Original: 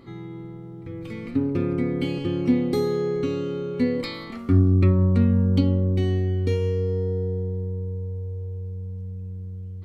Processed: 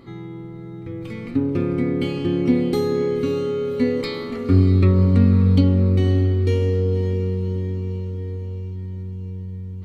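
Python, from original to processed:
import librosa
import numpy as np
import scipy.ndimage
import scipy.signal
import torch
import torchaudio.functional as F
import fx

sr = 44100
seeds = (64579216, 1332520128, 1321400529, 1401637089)

y = fx.echo_diffused(x, sr, ms=565, feedback_pct=59, wet_db=-10.0)
y = y * librosa.db_to_amplitude(2.5)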